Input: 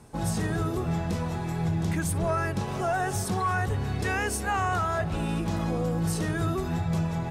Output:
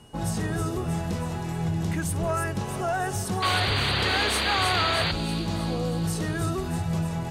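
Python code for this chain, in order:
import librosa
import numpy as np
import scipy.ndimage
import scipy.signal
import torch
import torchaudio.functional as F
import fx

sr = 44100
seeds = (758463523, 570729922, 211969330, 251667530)

y = x + 10.0 ** (-57.0 / 20.0) * np.sin(2.0 * np.pi * 2900.0 * np.arange(len(x)) / sr)
y = fx.spec_paint(y, sr, seeds[0], shape='noise', start_s=3.42, length_s=1.7, low_hz=250.0, high_hz=4800.0, level_db=-27.0)
y = fx.echo_wet_highpass(y, sr, ms=317, feedback_pct=63, hz=4900.0, wet_db=-5)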